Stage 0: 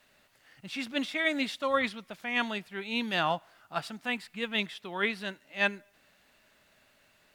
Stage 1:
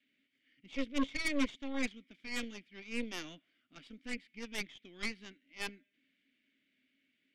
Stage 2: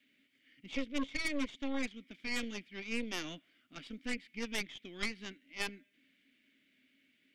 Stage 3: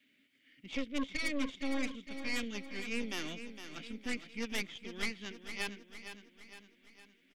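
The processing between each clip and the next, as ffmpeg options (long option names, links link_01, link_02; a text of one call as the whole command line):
ffmpeg -i in.wav -filter_complex "[0:a]asplit=3[link_01][link_02][link_03];[link_01]bandpass=frequency=270:width_type=q:width=8,volume=0dB[link_04];[link_02]bandpass=frequency=2290:width_type=q:width=8,volume=-6dB[link_05];[link_03]bandpass=frequency=3010:width_type=q:width=8,volume=-9dB[link_06];[link_04][link_05][link_06]amix=inputs=3:normalize=0,aeval=exprs='0.0562*(cos(1*acos(clip(val(0)/0.0562,-1,1)))-cos(1*PI/2))+0.0158*(cos(6*acos(clip(val(0)/0.0562,-1,1)))-cos(6*PI/2))':channel_layout=same,bandreject=frequency=4100:width=20,volume=1dB" out.wav
ffmpeg -i in.wav -af "acompressor=threshold=-37dB:ratio=6,volume=6dB" out.wav
ffmpeg -i in.wav -af "asoftclip=type=tanh:threshold=-22.5dB,aecho=1:1:460|920|1380|1840|2300|2760:0.316|0.161|0.0823|0.0419|0.0214|0.0109,volume=1dB" out.wav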